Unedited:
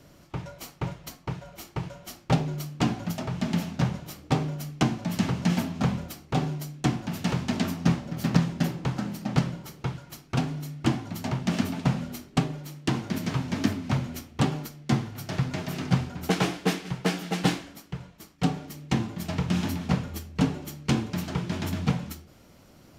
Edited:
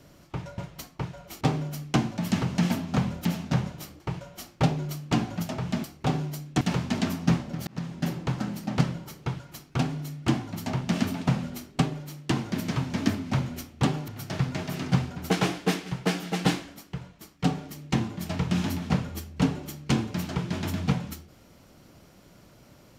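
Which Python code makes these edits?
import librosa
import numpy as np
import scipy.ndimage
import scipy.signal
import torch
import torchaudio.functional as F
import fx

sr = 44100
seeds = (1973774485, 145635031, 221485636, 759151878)

y = fx.edit(x, sr, fx.cut(start_s=0.58, length_s=0.28),
    fx.swap(start_s=1.69, length_s=1.84, other_s=4.28, other_length_s=1.84),
    fx.cut(start_s=6.89, length_s=0.3),
    fx.fade_in_span(start_s=8.25, length_s=0.51),
    fx.cut(start_s=14.66, length_s=0.41), tone=tone)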